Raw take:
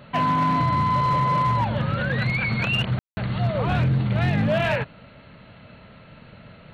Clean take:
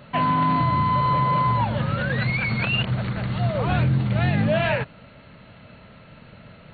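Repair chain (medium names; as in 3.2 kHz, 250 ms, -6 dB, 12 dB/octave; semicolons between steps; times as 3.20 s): clip repair -15.5 dBFS; room tone fill 2.99–3.17 s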